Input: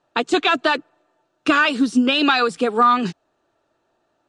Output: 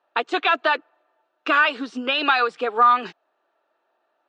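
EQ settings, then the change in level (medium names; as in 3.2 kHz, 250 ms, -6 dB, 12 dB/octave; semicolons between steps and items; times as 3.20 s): band-pass 550–3000 Hz; 0.0 dB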